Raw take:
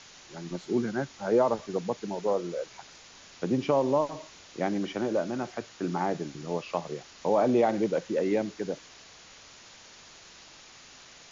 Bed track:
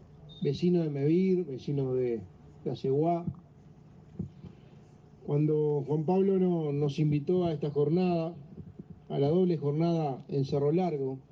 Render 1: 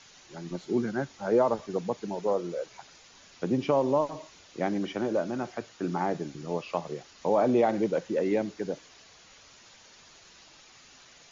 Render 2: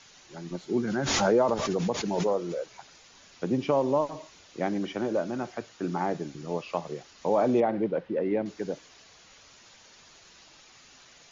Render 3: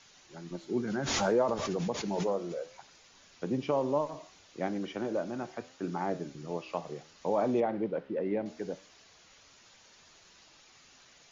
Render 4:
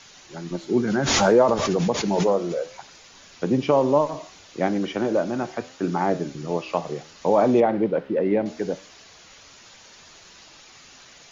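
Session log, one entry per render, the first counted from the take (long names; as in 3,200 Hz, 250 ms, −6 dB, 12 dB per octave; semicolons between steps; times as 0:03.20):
broadband denoise 6 dB, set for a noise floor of −52 dBFS
0:00.87–0:02.75: background raised ahead of every attack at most 26 dB per second; 0:07.60–0:08.46: high-frequency loss of the air 360 metres
flanger 0.67 Hz, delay 9.1 ms, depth 7 ms, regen +86%
level +10.5 dB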